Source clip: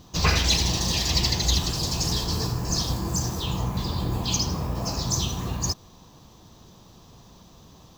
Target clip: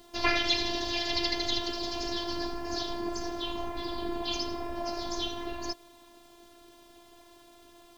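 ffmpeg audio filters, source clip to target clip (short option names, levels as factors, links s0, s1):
-af "highpass=140,equalizer=f=260:t=q:w=4:g=-9,equalizer=f=1100:t=q:w=4:g=-8,equalizer=f=2600:t=q:w=4:g=-5,equalizer=f=3900:t=q:w=4:g=-4,lowpass=f=4000:w=0.5412,lowpass=f=4000:w=1.3066,acrusher=bits=9:mix=0:aa=0.000001,afftfilt=real='hypot(re,im)*cos(PI*b)':imag='0':win_size=512:overlap=0.75,volume=1.68"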